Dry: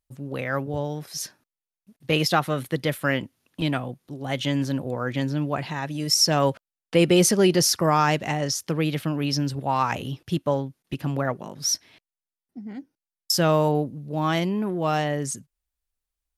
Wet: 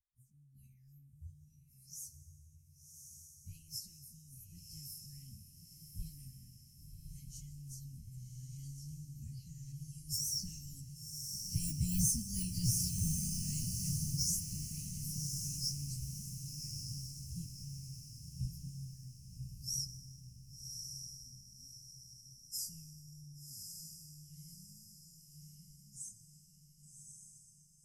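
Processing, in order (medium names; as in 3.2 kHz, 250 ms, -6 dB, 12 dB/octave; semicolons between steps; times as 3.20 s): Doppler pass-by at 7.34 s, 8 m/s, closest 5.8 m; de-esser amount 65%; inverse Chebyshev band-stop 470–1500 Hz, stop band 80 dB; treble shelf 4 kHz -8 dB; harmonic-percussive split harmonic -17 dB; bass shelf 410 Hz +3.5 dB; static phaser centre 1.5 kHz, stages 4; plain phase-vocoder stretch 1.7×; echo that smears into a reverb 1122 ms, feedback 46%, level -4 dB; plate-style reverb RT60 2 s, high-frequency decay 0.95×, DRR 12.5 dB; trim +17.5 dB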